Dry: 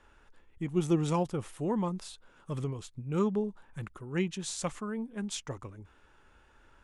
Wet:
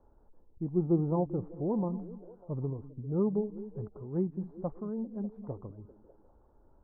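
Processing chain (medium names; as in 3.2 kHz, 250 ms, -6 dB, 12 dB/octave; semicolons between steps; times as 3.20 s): inverse Chebyshev low-pass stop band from 2.8 kHz, stop band 60 dB; repeats whose band climbs or falls 198 ms, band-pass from 210 Hz, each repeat 0.7 oct, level -11 dB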